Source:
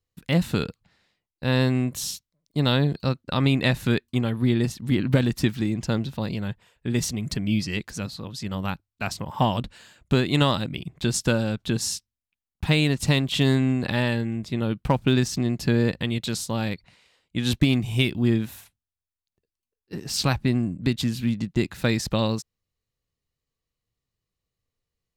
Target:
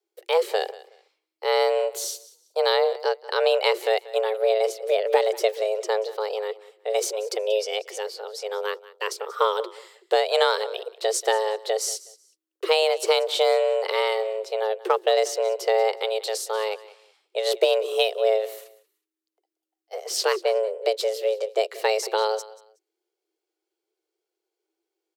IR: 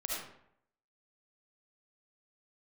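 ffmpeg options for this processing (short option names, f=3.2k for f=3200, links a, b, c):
-af "aecho=1:1:185|370:0.112|0.0258,afreqshift=320"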